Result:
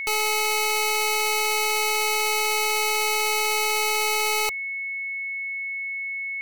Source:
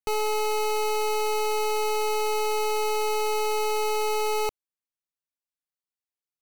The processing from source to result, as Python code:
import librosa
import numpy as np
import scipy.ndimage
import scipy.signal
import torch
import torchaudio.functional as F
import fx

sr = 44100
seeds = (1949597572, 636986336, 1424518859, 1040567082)

y = fx.tilt_shelf(x, sr, db=-8.0, hz=970.0)
y = y + 10.0 ** (-29.0 / 20.0) * np.sin(2.0 * np.pi * 2200.0 * np.arange(len(y)) / sr)
y = F.gain(torch.from_numpy(y), 1.5).numpy()